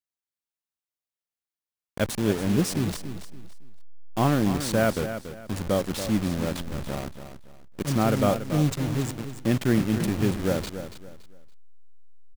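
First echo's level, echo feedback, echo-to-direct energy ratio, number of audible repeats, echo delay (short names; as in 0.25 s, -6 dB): -10.5 dB, 29%, -10.0 dB, 3, 0.283 s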